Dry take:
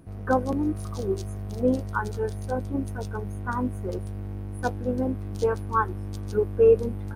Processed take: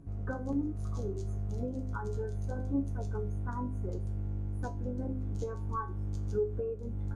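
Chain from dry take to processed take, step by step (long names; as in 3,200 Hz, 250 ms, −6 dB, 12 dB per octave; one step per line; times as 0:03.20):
parametric band 6,900 Hz +11.5 dB 0.52 octaves
hum removal 128.6 Hz, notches 9
downward compressor 5 to 1, threshold −28 dBFS, peak gain reduction 13.5 dB
spectral tilt −3 dB per octave
tuned comb filter 140 Hz, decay 0.28 s, harmonics all, mix 80%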